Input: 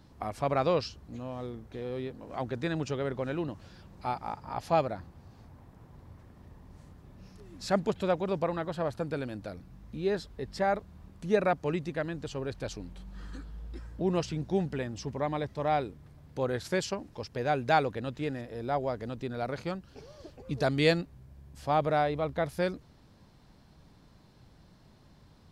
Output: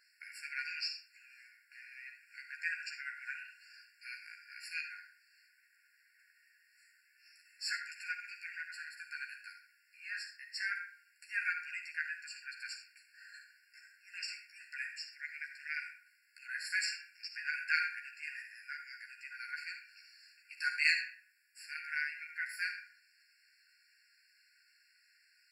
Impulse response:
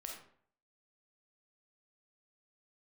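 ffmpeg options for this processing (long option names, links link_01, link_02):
-filter_complex "[0:a]asplit=2[link_01][link_02];[1:a]atrim=start_sample=2205,adelay=13[link_03];[link_02][link_03]afir=irnorm=-1:irlink=0,volume=2dB[link_04];[link_01][link_04]amix=inputs=2:normalize=0,afftfilt=real='re*eq(mod(floor(b*sr/1024/1400),2),1)':imag='im*eq(mod(floor(b*sr/1024/1400),2),1)':win_size=1024:overlap=0.75,volume=1.5dB"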